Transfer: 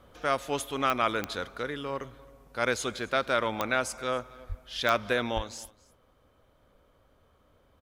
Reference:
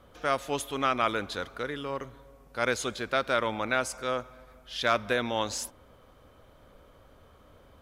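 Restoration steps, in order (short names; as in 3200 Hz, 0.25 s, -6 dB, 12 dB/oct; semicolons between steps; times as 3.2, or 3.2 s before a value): de-click; 4.48–4.6 HPF 140 Hz 24 dB/oct; 5.35–5.47 HPF 140 Hz 24 dB/oct; inverse comb 0.27 s -22.5 dB; 5.38 gain correction +8 dB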